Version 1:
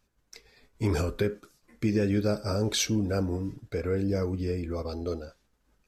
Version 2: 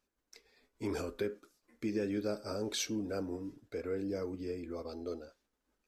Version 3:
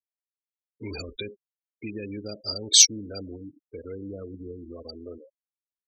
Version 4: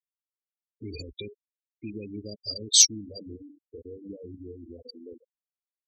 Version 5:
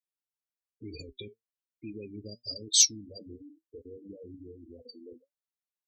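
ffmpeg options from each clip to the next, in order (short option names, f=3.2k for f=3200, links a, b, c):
-af "lowshelf=f=200:t=q:w=1.5:g=-8,volume=-8.5dB"
-filter_complex "[0:a]afftfilt=real='re*gte(hypot(re,im),0.0141)':imag='im*gte(hypot(re,im),0.0141)':win_size=1024:overlap=0.75,aexciter=amount=7.1:drive=3.4:freq=2.3k,acrossover=split=140|3000[a][b][c];[b]acompressor=threshold=-57dB:ratio=1.5[d];[a][d][c]amix=inputs=3:normalize=0,volume=6.5dB"
-af "bandreject=f=96.52:t=h:w=4,bandreject=f=193.04:t=h:w=4,bandreject=f=289.56:t=h:w=4,bandreject=f=386.08:t=h:w=4,bandreject=f=482.6:t=h:w=4,afftfilt=real='re*gte(hypot(re,im),0.0398)':imag='im*gte(hypot(re,im),0.0398)':win_size=1024:overlap=0.75,equalizer=f=1.3k:t=o:w=1.9:g=-13"
-af "flanger=delay=6.2:depth=2.7:regen=64:speed=1.1:shape=sinusoidal"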